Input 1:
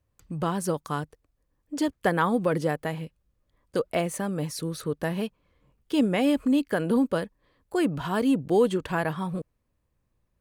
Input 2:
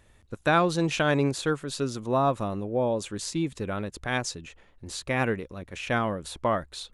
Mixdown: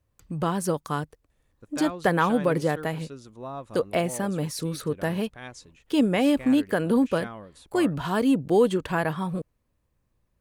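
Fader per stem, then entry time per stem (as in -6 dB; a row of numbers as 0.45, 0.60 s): +1.5, -13.0 dB; 0.00, 1.30 s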